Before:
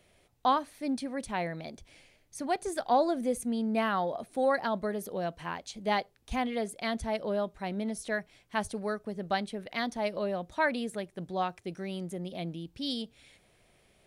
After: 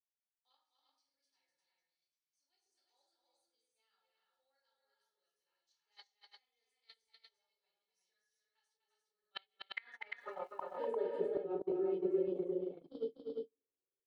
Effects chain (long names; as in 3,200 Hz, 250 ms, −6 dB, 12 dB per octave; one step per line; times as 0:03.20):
comb filter 2.3 ms, depth 82%
rectangular room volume 120 cubic metres, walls mixed, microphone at 1.6 metres
band-pass filter sweep 5,100 Hz → 390 Hz, 0:09.01–0:11.23
noise gate −32 dBFS, range −44 dB
0:08.77–0:09.42: parametric band 9,800 Hz −12.5 dB 2.3 octaves
downward compressor 2.5 to 1, threshold −39 dBFS, peak gain reduction 14 dB
gate with flip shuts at −28 dBFS, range −28 dB
multi-tap delay 246/348 ms −5.5/−3 dB
0:10.19–0:10.86: surface crackle 510 per second −68 dBFS
level +2 dB